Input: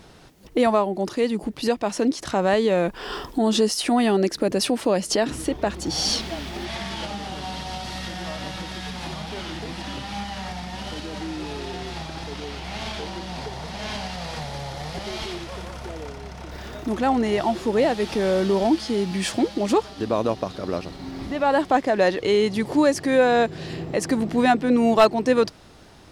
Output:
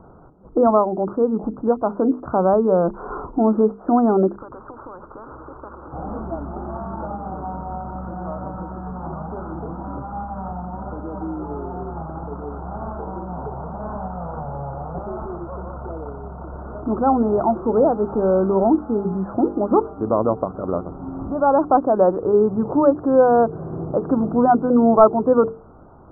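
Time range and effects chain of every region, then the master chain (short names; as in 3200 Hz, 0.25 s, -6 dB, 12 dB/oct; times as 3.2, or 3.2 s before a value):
4.37–5.93 compressor 3:1, threshold -25 dBFS + fixed phaser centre 710 Hz, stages 6 + spectral compressor 4:1
whole clip: steep low-pass 1400 Hz 96 dB/oct; notches 50/100/150/200/250/300/350/400/450 Hz; gain +4 dB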